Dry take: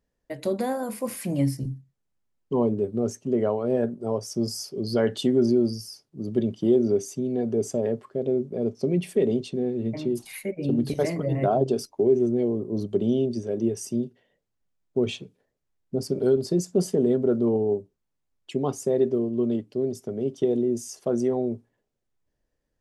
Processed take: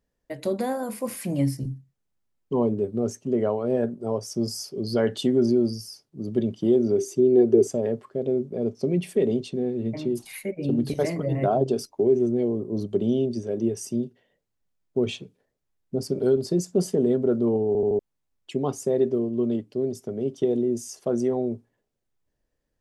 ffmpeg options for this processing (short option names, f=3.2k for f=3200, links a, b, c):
-filter_complex "[0:a]asettb=1/sr,asplit=3[a][b][c];[a]atrim=end=6.984[d];[b]atrim=start=6.98:end=7.67,asetpts=PTS-STARTPTS,afade=t=in:d=0.004:c=qsin,afade=t=out:st=0.686:d=0.004:c=qsin,equalizer=f=370:w=3.5:g=14[e];[c]atrim=start=7.666[f];[d][e]acrossfade=d=0.004:c1=hsin:c2=qsin[g];[g][f]acrossfade=d=0.004:c1=qsin:c2=hsin,asplit=5[h][i][j][k][l];[h]atrim=end=17.752[m];[i]atrim=start=17.668:end=17.752[n];[j]atrim=start=17.668:end=17.752[o];[k]atrim=start=17.668:end=17.752[p];[l]atrim=start=17.988[q];[m][n]acrossfade=d=0.004:c1=hsin:c2=hsin[r];[r][o]acrossfade=d=0.004:c1=hsin:c2=hsin[s];[s][p]acrossfade=d=0.004:c1=hsin:c2=hsin[t];[t][q]acrossfade=d=0.004:c1=hsin:c2=hsin"